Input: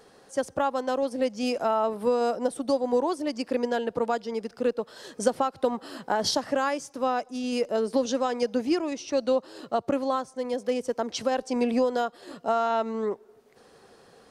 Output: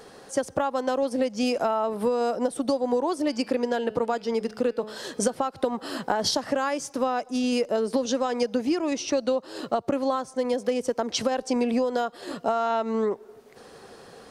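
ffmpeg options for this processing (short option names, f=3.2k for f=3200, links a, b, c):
-filter_complex "[0:a]asettb=1/sr,asplit=3[a][b][c];[a]atrim=end=3.134[d];[b]atrim=start=3.13:end=5.34,asetpts=PTS-STARTPTS,afade=t=in:d=0.004:c=qsin,afade=t=out:st=2.206:d=0.004:c=qsin,bandreject=f=214.8:t=h:w=4,bandreject=f=429.6:t=h:w=4,bandreject=f=644.4:t=h:w=4,bandreject=f=859.2:t=h:w=4,bandreject=f=1.074k:t=h:w=4,bandreject=f=1.2888k:t=h:w=4,bandreject=f=1.5036k:t=h:w=4,bandreject=f=1.7184k:t=h:w=4,bandreject=f=1.9332k:t=h:w=4,bandreject=f=2.148k:t=h:w=4,bandreject=f=2.3628k:t=h:w=4,bandreject=f=2.5776k:t=h:w=4,bandreject=f=2.7924k:t=h:w=4,bandreject=f=3.0072k:t=h:w=4,bandreject=f=3.222k:t=h:w=4,bandreject=f=3.4368k:t=h:w=4,bandreject=f=3.6516k:t=h:w=4,bandreject=f=3.8664k:t=h:w=4,bandreject=f=4.0812k:t=h:w=4,bandreject=f=4.296k:t=h:w=4,bandreject=f=4.5108k:t=h:w=4,bandreject=f=4.7256k:t=h:w=4,bandreject=f=4.9404k:t=h:w=4,bandreject=f=5.1552k:t=h:w=4,bandreject=f=5.37k:t=h:w=4[e];[c]atrim=start=5.336[f];[d][e]acrossfade=d=0.004:c1=hsin:c2=qsin[g];[g][f]acrossfade=d=0.004:c1=qsin:c2=hsin,acompressor=threshold=-29dB:ratio=6,volume=7.5dB"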